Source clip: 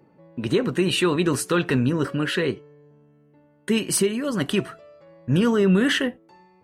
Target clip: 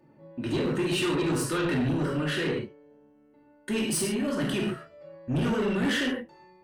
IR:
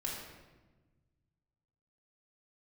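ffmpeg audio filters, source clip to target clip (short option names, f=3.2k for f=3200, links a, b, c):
-filter_complex "[1:a]atrim=start_sample=2205,atrim=end_sample=6615[a];[0:a][a]afir=irnorm=-1:irlink=0,asoftclip=type=tanh:threshold=-19dB,volume=-3dB"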